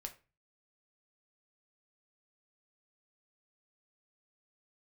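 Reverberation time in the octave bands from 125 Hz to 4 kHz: 0.50, 0.40, 0.35, 0.30, 0.30, 0.25 seconds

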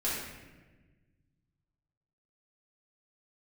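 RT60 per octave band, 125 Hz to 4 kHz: 2.7, 2.0, 1.5, 1.1, 1.2, 0.85 seconds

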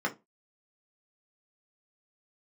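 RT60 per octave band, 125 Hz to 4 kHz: 0.25, 0.25, 0.25, 0.20, 0.15, 0.15 seconds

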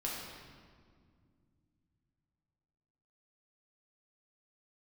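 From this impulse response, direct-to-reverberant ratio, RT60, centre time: −5.0 dB, 2.0 s, 96 ms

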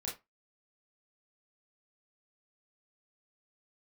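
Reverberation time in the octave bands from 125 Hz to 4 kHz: 0.25, 0.20, 0.20, 0.20, 0.20, 0.15 seconds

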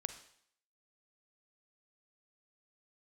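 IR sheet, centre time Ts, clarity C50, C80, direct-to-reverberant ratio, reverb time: 10 ms, 10.5 dB, 13.5 dB, 9.0 dB, 0.65 s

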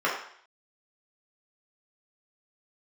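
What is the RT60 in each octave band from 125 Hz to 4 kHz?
0.45, 0.55, 0.55, 0.60, 0.65, 0.60 seconds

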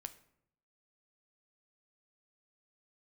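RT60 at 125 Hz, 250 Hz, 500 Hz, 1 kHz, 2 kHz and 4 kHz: 0.95, 0.85, 0.75, 0.70, 0.60, 0.45 seconds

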